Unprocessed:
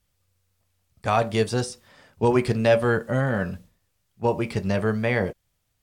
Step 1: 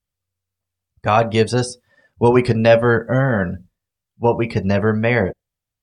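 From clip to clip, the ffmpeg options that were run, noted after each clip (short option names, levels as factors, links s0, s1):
-af "afftdn=nr=18:nf=-43,volume=2.11"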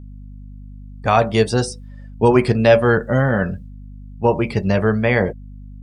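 -af "aeval=exprs='val(0)+0.0178*(sin(2*PI*50*n/s)+sin(2*PI*2*50*n/s)/2+sin(2*PI*3*50*n/s)/3+sin(2*PI*4*50*n/s)/4+sin(2*PI*5*50*n/s)/5)':c=same"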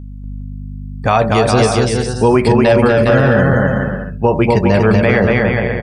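-filter_complex "[0:a]asplit=2[s0][s1];[s1]aecho=0:1:240|408|525.6|607.9|665.5:0.631|0.398|0.251|0.158|0.1[s2];[s0][s2]amix=inputs=2:normalize=0,alimiter=level_in=2.51:limit=0.891:release=50:level=0:latency=1,volume=0.841"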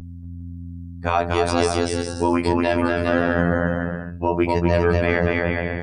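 -af "areverse,acompressor=mode=upward:threshold=0.1:ratio=2.5,areverse,afftfilt=real='hypot(re,im)*cos(PI*b)':imag='0':win_size=2048:overlap=0.75,volume=0.668"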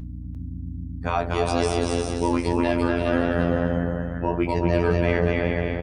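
-af "flanger=delay=6.4:depth=3.6:regen=-83:speed=1.8:shape=sinusoidal,aecho=1:1:348:0.501,aeval=exprs='val(0)+0.02*(sin(2*PI*60*n/s)+sin(2*PI*2*60*n/s)/2+sin(2*PI*3*60*n/s)/3+sin(2*PI*4*60*n/s)/4+sin(2*PI*5*60*n/s)/5)':c=same"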